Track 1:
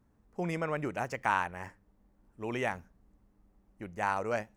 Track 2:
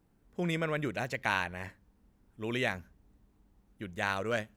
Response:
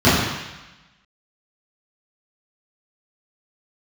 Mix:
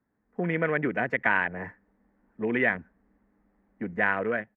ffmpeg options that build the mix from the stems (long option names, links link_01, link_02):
-filter_complex "[0:a]acompressor=threshold=-37dB:ratio=6,volume=-6dB[link_01];[1:a]afwtdn=0.0112,equalizer=frequency=1200:width_type=o:width=2.1:gain=-4.5,acompressor=threshold=-39dB:ratio=1.5,adelay=3.8,volume=2.5dB[link_02];[link_01][link_02]amix=inputs=2:normalize=0,acrossover=split=160 2600:gain=0.2 1 0.0708[link_03][link_04][link_05];[link_03][link_04][link_05]amix=inputs=3:normalize=0,dynaudnorm=framelen=100:gausssize=7:maxgain=9dB,firequalizer=gain_entry='entry(1200,0);entry(1800,9);entry(2700,-2)':delay=0.05:min_phase=1"